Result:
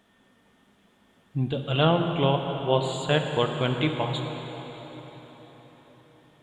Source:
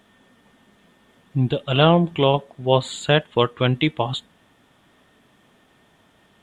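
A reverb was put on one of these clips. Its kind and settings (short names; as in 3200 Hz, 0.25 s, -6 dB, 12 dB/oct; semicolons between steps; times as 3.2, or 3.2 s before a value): plate-style reverb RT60 4.9 s, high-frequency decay 0.8×, DRR 4 dB; gain -6.5 dB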